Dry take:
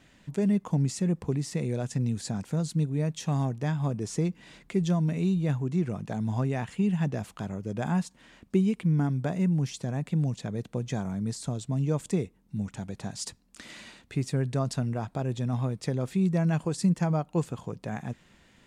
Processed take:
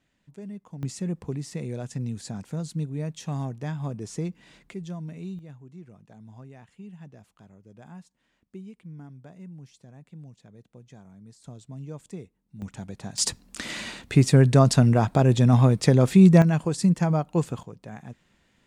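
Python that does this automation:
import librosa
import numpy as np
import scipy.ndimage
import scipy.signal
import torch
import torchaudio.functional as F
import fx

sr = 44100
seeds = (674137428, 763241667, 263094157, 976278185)

y = fx.gain(x, sr, db=fx.steps((0.0, -14.0), (0.83, -3.0), (4.74, -10.0), (5.39, -17.5), (11.44, -11.0), (12.62, -1.0), (13.18, 11.5), (16.42, 3.5), (17.63, -6.0)))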